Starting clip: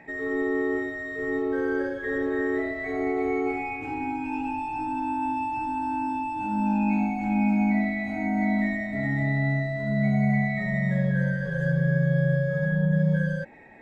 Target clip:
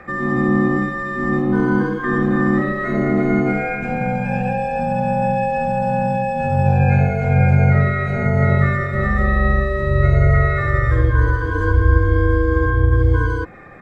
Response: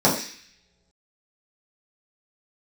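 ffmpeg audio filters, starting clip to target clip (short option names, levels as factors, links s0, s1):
-filter_complex "[0:a]afreqshift=-71,asplit=2[s0][s1];[s1]asetrate=29433,aresample=44100,atempo=1.49831,volume=0.891[s2];[s0][s2]amix=inputs=2:normalize=0,volume=2.24"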